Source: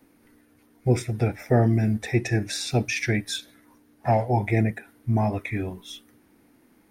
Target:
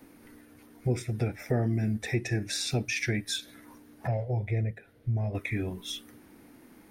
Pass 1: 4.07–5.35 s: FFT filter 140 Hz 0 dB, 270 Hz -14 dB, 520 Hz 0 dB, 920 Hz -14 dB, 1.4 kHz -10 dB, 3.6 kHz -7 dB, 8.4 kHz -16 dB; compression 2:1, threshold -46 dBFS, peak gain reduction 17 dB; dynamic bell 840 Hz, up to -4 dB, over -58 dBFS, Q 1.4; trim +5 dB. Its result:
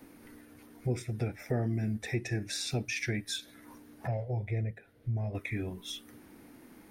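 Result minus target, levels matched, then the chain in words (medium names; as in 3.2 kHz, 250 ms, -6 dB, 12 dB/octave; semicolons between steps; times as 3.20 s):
compression: peak gain reduction +3.5 dB
4.07–5.35 s: FFT filter 140 Hz 0 dB, 270 Hz -14 dB, 520 Hz 0 dB, 920 Hz -14 dB, 1.4 kHz -10 dB, 3.6 kHz -7 dB, 8.4 kHz -16 dB; compression 2:1, threshold -38.5 dBFS, peak gain reduction 13 dB; dynamic bell 840 Hz, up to -4 dB, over -58 dBFS, Q 1.4; trim +5 dB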